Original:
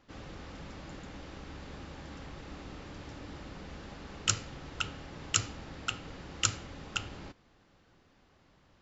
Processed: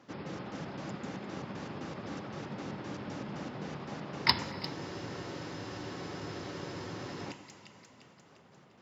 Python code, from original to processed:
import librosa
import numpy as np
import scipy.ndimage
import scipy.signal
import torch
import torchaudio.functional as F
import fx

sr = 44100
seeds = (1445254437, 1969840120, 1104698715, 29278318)

p1 = fx.pitch_trill(x, sr, semitones=-6.0, every_ms=129)
p2 = fx.peak_eq(p1, sr, hz=5900.0, db=7.0, octaves=0.67)
p3 = np.clip(p2, -10.0 ** (-19.5 / 20.0), 10.0 ** (-19.5 / 20.0))
p4 = p2 + F.gain(torch.from_numpy(p3), -5.5).numpy()
p5 = scipy.signal.sosfilt(scipy.signal.butter(4, 120.0, 'highpass', fs=sr, output='sos'), p4)
p6 = fx.high_shelf(p5, sr, hz=2500.0, db=-10.0)
p7 = fx.echo_split(p6, sr, split_hz=2300.0, low_ms=123, high_ms=349, feedback_pct=52, wet_db=-15.0)
p8 = fx.rev_plate(p7, sr, seeds[0], rt60_s=4.3, hf_ratio=0.85, predelay_ms=0, drr_db=17.0)
p9 = fx.spec_freeze(p8, sr, seeds[1], at_s=4.75, hold_s=2.51)
y = F.gain(torch.from_numpy(p9), 4.0).numpy()